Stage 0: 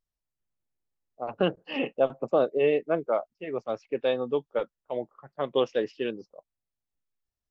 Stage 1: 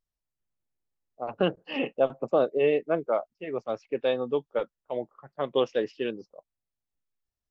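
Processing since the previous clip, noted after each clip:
no processing that can be heard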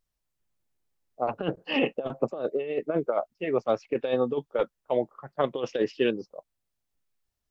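compressor whose output falls as the input rises −27 dBFS, ratio −0.5
level +3 dB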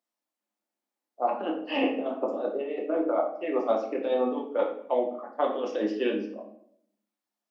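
Chebyshev high-pass with heavy ripple 200 Hz, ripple 6 dB
rectangular room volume 120 cubic metres, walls mixed, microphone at 0.84 metres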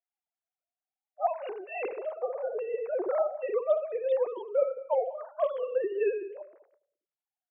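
three sine waves on the formant tracks
single-tap delay 196 ms −23.5 dB
level −2 dB

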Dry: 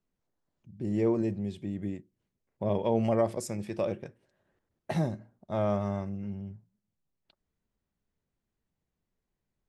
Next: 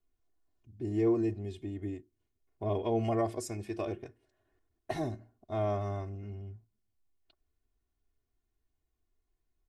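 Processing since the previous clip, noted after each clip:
low-shelf EQ 66 Hz +9 dB
comb filter 2.8 ms, depth 94%
level −5 dB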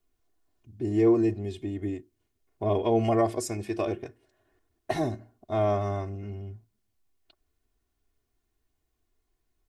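low-shelf EQ 120 Hz −4.5 dB
level +7 dB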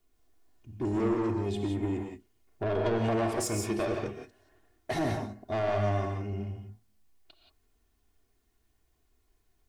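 downward compressor 4 to 1, threshold −24 dBFS, peak gain reduction 7 dB
soft clipping −29.5 dBFS, distortion −10 dB
convolution reverb, pre-delay 3 ms, DRR 2.5 dB
level +3.5 dB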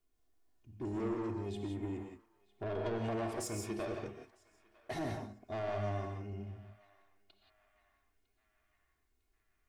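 feedback echo with a band-pass in the loop 953 ms, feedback 63%, band-pass 2,000 Hz, level −21.5 dB
level −8.5 dB

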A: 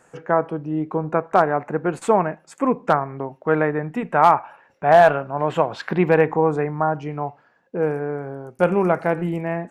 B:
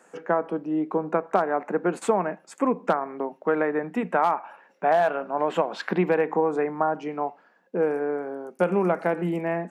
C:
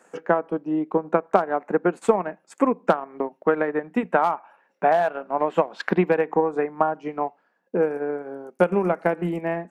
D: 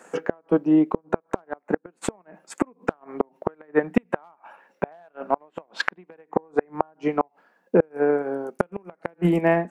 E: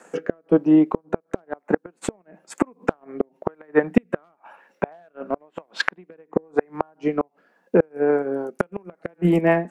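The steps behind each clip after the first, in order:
downward compressor 6 to 1, threshold −17 dBFS, peak gain reduction 9 dB; elliptic high-pass filter 180 Hz, stop band 40 dB
transient designer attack +5 dB, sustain −8 dB
gate with flip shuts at −13 dBFS, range −36 dB; level +7 dB
rotating-speaker cabinet horn 1 Hz, later 5.5 Hz, at 0:07.64; level +3.5 dB

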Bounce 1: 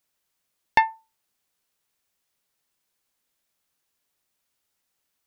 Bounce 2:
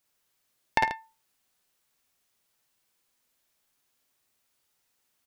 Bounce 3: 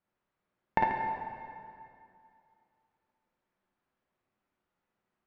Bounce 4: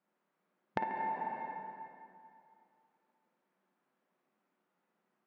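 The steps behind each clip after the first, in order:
downward compressor, threshold −22 dBFS, peak gain reduction 9.5 dB; on a send: multi-tap delay 52/60/75/105/137 ms −4/−4.5/−18/−17/−11 dB
low-pass filter 1,500 Hz 12 dB per octave; parametric band 190 Hz +8.5 dB 0.31 octaves; dense smooth reverb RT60 2.5 s, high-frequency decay 0.8×, DRR 2 dB; level −1.5 dB
linear-phase brick-wall high-pass 150 Hz; downward compressor 8 to 1, threshold −36 dBFS, peak gain reduction 14 dB; high-shelf EQ 3,300 Hz −10.5 dB; level +4.5 dB

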